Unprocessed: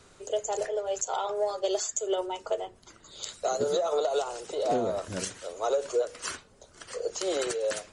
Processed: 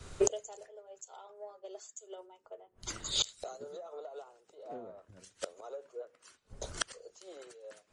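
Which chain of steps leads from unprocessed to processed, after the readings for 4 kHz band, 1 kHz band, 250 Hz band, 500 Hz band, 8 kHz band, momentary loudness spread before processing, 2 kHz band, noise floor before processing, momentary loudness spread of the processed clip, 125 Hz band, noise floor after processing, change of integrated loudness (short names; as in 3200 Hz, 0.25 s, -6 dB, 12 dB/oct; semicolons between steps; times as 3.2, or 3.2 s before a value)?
-1.0 dB, -16.0 dB, -10.0 dB, -12.5 dB, -5.5 dB, 9 LU, -7.5 dB, -57 dBFS, 20 LU, -6.5 dB, -73 dBFS, -9.0 dB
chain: flipped gate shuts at -32 dBFS, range -27 dB; three-band expander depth 100%; gain +9 dB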